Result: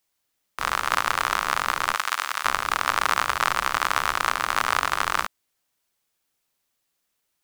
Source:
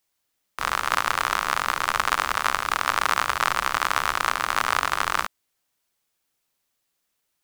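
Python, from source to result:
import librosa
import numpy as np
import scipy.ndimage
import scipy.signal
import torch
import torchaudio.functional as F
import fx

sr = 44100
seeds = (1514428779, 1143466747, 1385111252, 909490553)

y = fx.highpass(x, sr, hz=1500.0, slope=6, at=(1.95, 2.45))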